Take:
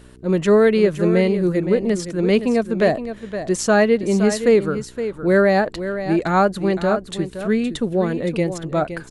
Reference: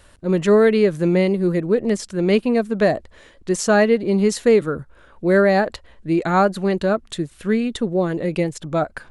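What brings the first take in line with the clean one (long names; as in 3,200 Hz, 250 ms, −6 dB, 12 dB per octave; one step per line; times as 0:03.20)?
hum removal 62.6 Hz, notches 7
echo removal 517 ms −10.5 dB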